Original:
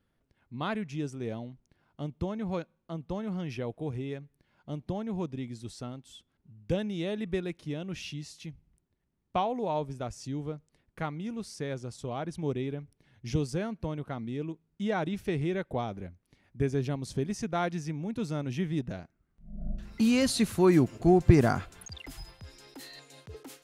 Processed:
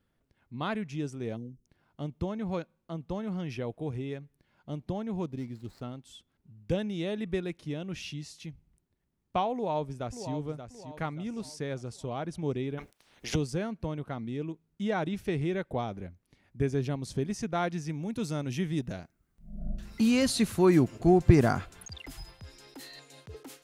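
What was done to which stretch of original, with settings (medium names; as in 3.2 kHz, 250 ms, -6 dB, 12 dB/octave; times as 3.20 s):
1.36–1.66 s: time-frequency box 530–5000 Hz -24 dB
5.23–5.82 s: median filter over 15 samples
9.54–10.33 s: echo throw 580 ms, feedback 40%, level -9 dB
12.77–13.34 s: spectral peaks clipped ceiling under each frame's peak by 29 dB
17.89–20.00 s: treble shelf 5 kHz +9 dB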